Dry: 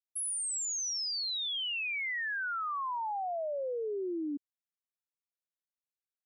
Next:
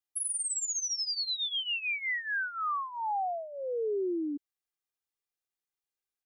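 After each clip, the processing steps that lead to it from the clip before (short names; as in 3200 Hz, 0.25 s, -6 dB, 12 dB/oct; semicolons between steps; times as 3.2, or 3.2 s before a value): comb 2.5 ms, depth 68%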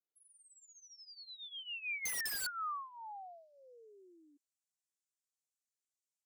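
band-pass sweep 410 Hz -> 7300 Hz, 0.66–3.93; wrapped overs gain 37.5 dB; gain +4 dB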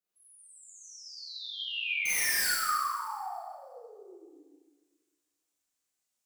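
Schroeder reverb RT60 1.5 s, combs from 31 ms, DRR -9.5 dB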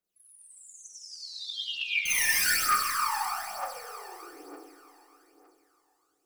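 echo with dull and thin repeats by turns 0.126 s, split 1200 Hz, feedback 80%, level -4 dB; phaser 1.1 Hz, delay 1.2 ms, feedback 59%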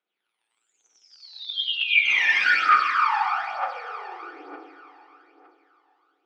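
speaker cabinet 300–3600 Hz, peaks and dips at 310 Hz +3 dB, 820 Hz +5 dB, 1400 Hz +8 dB, 2300 Hz +6 dB, 3300 Hz +7 dB; gain +3.5 dB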